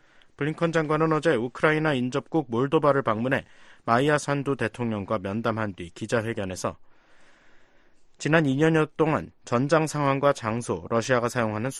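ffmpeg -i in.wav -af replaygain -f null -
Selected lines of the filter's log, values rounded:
track_gain = +4.5 dB
track_peak = 0.423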